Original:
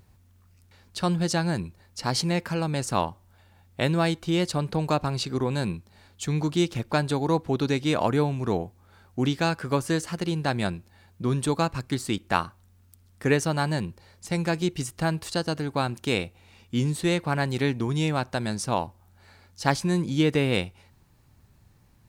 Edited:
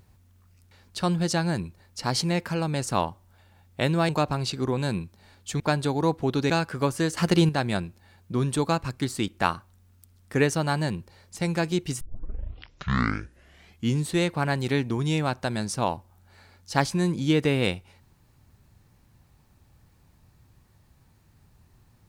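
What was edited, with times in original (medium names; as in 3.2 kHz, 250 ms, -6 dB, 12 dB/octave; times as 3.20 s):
4.09–4.82 s: delete
6.33–6.86 s: delete
7.76–9.40 s: delete
10.07–10.39 s: gain +8 dB
14.91 s: tape start 1.93 s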